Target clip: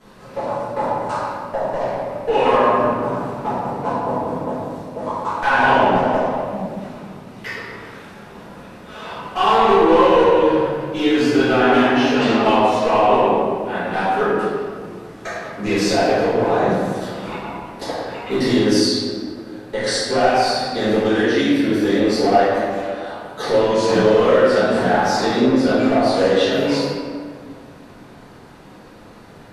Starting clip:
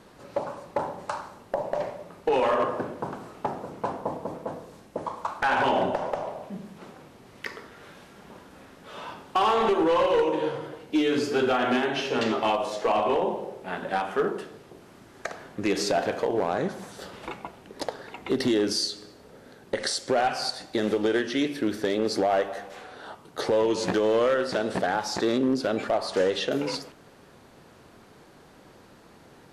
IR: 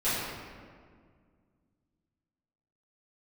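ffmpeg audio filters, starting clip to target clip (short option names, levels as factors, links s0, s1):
-filter_complex "[0:a]equalizer=f=380:w=1.8:g=-3[s0];[1:a]atrim=start_sample=2205[s1];[s0][s1]afir=irnorm=-1:irlink=0,volume=0.794"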